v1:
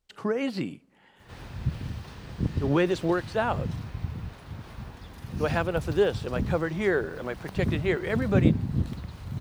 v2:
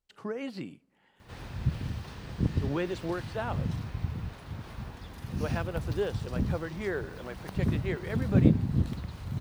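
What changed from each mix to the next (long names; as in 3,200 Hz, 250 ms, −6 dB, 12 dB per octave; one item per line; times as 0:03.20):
speech −8.0 dB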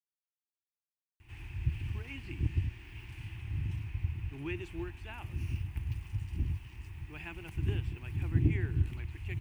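speech: entry +1.70 s
master: add drawn EQ curve 100 Hz 0 dB, 210 Hz −18 dB, 340 Hz −5 dB, 520 Hz −29 dB, 860 Hz −11 dB, 1,300 Hz −16 dB, 2,600 Hz +4 dB, 3,900 Hz −17 dB, 8,800 Hz −7 dB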